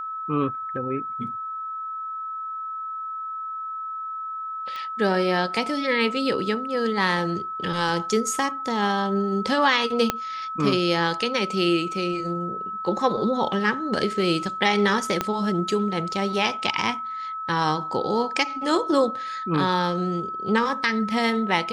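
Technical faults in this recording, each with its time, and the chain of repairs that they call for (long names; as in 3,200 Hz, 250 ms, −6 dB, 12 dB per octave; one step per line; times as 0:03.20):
whistle 1,300 Hz −29 dBFS
0:04.76: click −22 dBFS
0:10.10: click −6 dBFS
0:15.21: click −8 dBFS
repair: click removal
notch filter 1,300 Hz, Q 30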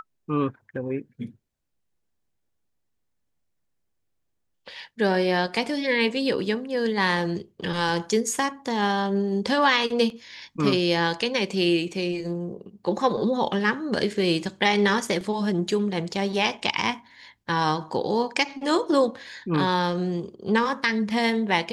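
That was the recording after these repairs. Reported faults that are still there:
0:10.10: click
0:15.21: click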